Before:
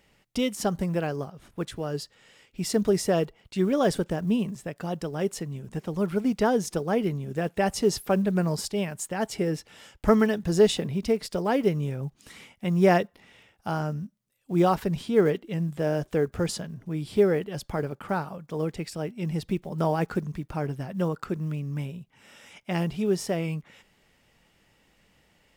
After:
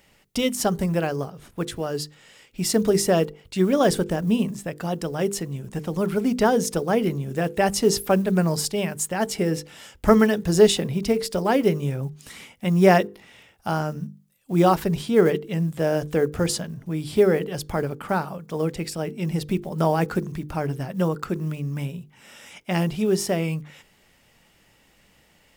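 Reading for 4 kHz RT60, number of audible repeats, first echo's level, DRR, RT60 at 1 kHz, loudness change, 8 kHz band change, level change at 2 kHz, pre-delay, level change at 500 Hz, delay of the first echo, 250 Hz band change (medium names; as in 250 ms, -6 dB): no reverb, no echo, no echo, no reverb, no reverb, +4.0 dB, +7.5 dB, +5.0 dB, no reverb, +4.0 dB, no echo, +3.5 dB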